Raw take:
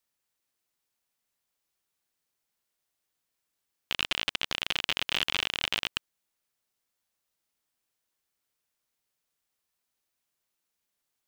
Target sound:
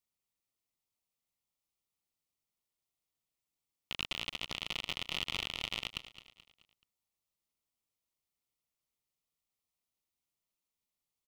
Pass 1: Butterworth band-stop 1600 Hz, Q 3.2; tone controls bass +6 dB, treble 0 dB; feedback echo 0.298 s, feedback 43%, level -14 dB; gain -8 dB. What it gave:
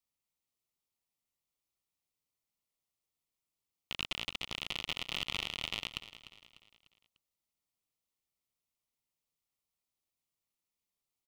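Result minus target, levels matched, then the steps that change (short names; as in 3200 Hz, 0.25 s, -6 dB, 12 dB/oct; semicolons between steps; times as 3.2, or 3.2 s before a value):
echo 83 ms late
change: feedback echo 0.215 s, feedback 43%, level -14 dB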